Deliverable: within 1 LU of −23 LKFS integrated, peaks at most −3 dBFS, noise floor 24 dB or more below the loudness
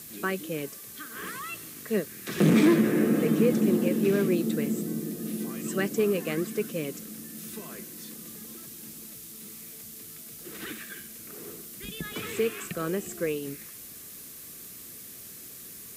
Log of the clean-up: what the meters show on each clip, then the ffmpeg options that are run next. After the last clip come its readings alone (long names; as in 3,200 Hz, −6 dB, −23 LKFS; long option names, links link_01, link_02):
background noise floor −45 dBFS; target noise floor −52 dBFS; integrated loudness −28.0 LKFS; sample peak −11.5 dBFS; target loudness −23.0 LKFS
→ -af "afftdn=noise_reduction=7:noise_floor=-45"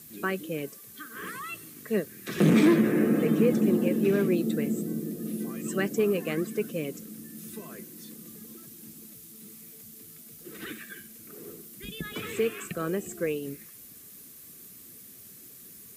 background noise floor −49 dBFS; target noise floor −52 dBFS
→ -af "afftdn=noise_reduction=6:noise_floor=-49"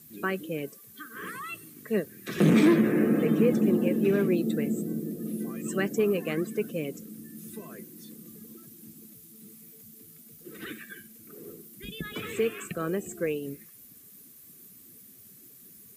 background noise floor −52 dBFS; integrated loudness −27.5 LKFS; sample peak −12.0 dBFS; target loudness −23.0 LKFS
→ -af "volume=4.5dB"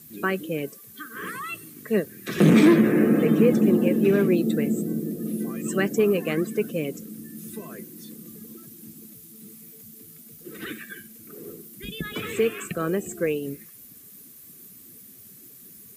integrated loudness −23.0 LKFS; sample peak −7.5 dBFS; background noise floor −47 dBFS